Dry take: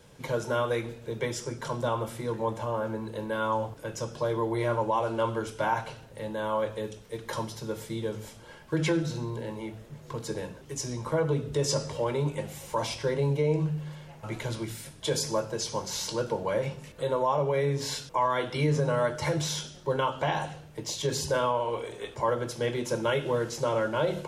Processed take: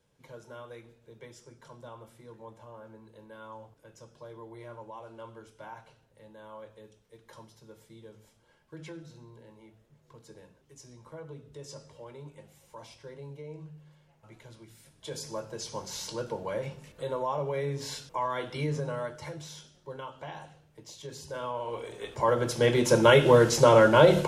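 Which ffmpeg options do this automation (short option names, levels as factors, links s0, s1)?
-af "volume=7.94,afade=t=in:st=14.68:d=1.16:silence=0.237137,afade=t=out:st=18.63:d=0.74:silence=0.375837,afade=t=in:st=21.26:d=0.79:silence=0.251189,afade=t=in:st=22.05:d=1.16:silence=0.281838"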